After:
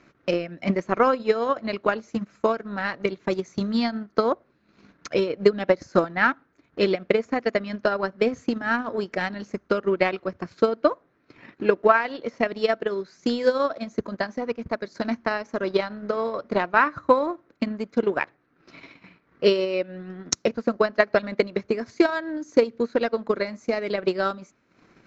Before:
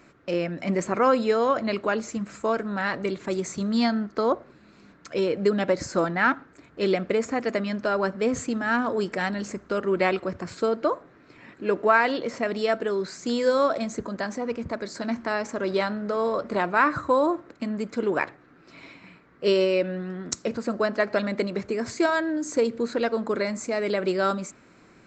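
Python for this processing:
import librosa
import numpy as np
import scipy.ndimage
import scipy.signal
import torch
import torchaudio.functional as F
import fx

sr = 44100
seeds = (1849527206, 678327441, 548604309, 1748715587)

y = scipy.signal.sosfilt(scipy.signal.ellip(4, 1.0, 50, 6400.0, 'lowpass', fs=sr, output='sos'), x)
y = fx.transient(y, sr, attack_db=10, sustain_db=-10)
y = y * librosa.db_to_amplitude(-2.0)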